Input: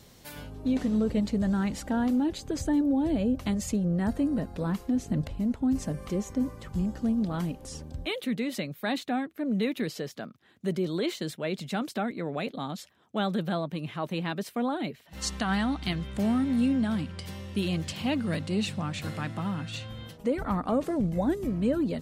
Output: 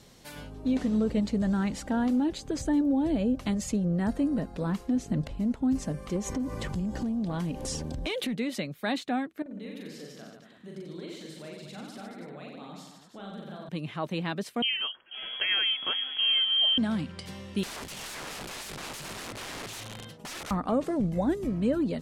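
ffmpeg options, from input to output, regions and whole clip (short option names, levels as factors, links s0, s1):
-filter_complex "[0:a]asettb=1/sr,asplit=3[s0][s1][s2];[s0]atrim=end=6.164[s3];[s1]atrim=start=6.16:end=8.34,asetpts=PTS-STARTPTS,afade=t=in:d=0.004:c=qsin,afade=t=out:st=2.176:d=0.004:c=qsin,bandreject=f=1300:w=8.6,acompressor=threshold=0.0126:ratio=6:attack=3.2:release=140:knee=1:detection=peak,aeval=exprs='0.0631*sin(PI/2*2.24*val(0)/0.0631)':c=same[s4];[s2]atrim=start=8.336[s5];[s3][s4]acrossfade=d=0.004:c1=hsin:c2=qsin[s6];[s6][s5]acrossfade=d=0.004:c1=qsin:c2=hsin,asettb=1/sr,asplit=3[s7][s8][s9];[s7]atrim=end=9.424[s10];[s8]atrim=start=9.42:end=13.69,asetpts=PTS-STARTPTS,afade=t=in:d=0.004:c=qsin,afade=t=out:st=4.266:d=0.004:c=qsin,acompressor=threshold=0.002:ratio=2:attack=3.2:release=140:knee=1:detection=peak,aecho=1:1:40|90|152.5|230.6|328.3:0.794|0.631|0.501|0.398|0.316,atrim=end_sample=188307[s11];[s9]atrim=start=13.686[s12];[s10][s11]acrossfade=d=0.004:c1=hsin:c2=qsin[s13];[s13][s12]acrossfade=d=0.004:c1=qsin:c2=hsin,asettb=1/sr,asplit=3[s14][s15][s16];[s14]atrim=end=14.624[s17];[s15]atrim=start=14.62:end=16.78,asetpts=PTS-STARTPTS,afade=t=in:d=0.004:c=qsin,afade=t=out:st=2.156:d=0.004:c=qsin,aecho=1:1:489:0.158,atrim=end_sample=95256,lowpass=f=2900:t=q:w=0.5098,lowpass=f=2900:t=q:w=0.6013,lowpass=f=2900:t=q:w=0.9,lowpass=f=2900:t=q:w=2.563,afreqshift=-3400[s18];[s16]atrim=start=16.776[s19];[s17][s18]acrossfade=d=0.004:c1=hsin:c2=qsin[s20];[s20][s19]acrossfade=d=0.004:c1=qsin:c2=hsin,asettb=1/sr,asplit=3[s21][s22][s23];[s21]atrim=end=17.634[s24];[s22]atrim=start=17.63:end=20.51,asetpts=PTS-STARTPTS,afade=t=in:d=0.004:c=qsin,afade=t=out:st=2.876:d=0.004:c=qsin,highpass=f=80:w=0.5412,highpass=f=80:w=1.3066,aeval=exprs='(mod(50.1*val(0)+1,2)-1)/50.1':c=same[s25];[s23]atrim=start=20.506[s26];[s24][s25]acrossfade=d=0.004:c1=hsin:c2=qsin[s27];[s27][s26]acrossfade=d=0.004:c1=qsin:c2=hsin,lowpass=11000,equalizer=f=85:t=o:w=0.55:g=-7"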